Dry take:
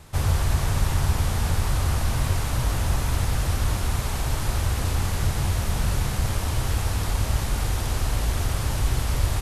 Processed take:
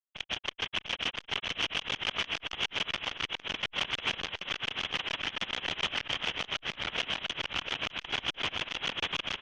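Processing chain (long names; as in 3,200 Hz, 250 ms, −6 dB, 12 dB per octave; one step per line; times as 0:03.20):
Butterworth high-pass 480 Hz 36 dB per octave
automatic gain control gain up to 9 dB
brickwall limiter −22 dBFS, peak gain reduction 9.5 dB
log-companded quantiser 2 bits
granular cloud 100 ms, grains 6.9 per second, pitch spread up and down by 0 semitones
repeating echo 694 ms, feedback 24%, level −3 dB
voice inversion scrambler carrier 3,900 Hz
saturating transformer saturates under 2,000 Hz
level +4 dB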